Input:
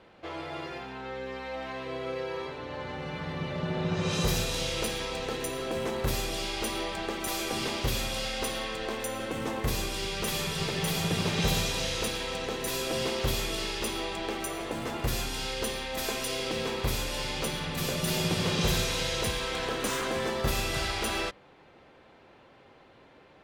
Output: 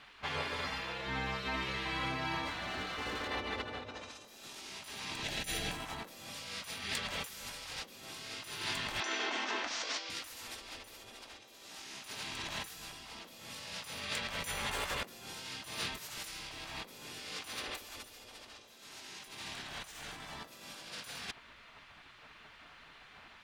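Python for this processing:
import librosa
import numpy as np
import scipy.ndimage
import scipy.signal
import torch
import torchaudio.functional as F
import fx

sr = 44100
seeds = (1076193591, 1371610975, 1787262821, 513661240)

y = fx.ellip_bandpass(x, sr, low_hz=370.0, high_hz=5800.0, order=3, stop_db=40, at=(9.0, 10.1))
y = fx.spec_gate(y, sr, threshold_db=-10, keep='weak')
y = fx.peak_eq(y, sr, hz=1100.0, db=-13.0, octaves=0.6, at=(5.23, 5.72))
y = fx.over_compress(y, sr, threshold_db=-42.0, ratio=-0.5)
y = fx.clip_hard(y, sr, threshold_db=-36.0, at=(2.45, 3.31))
y = y * 10.0 ** (1.0 / 20.0)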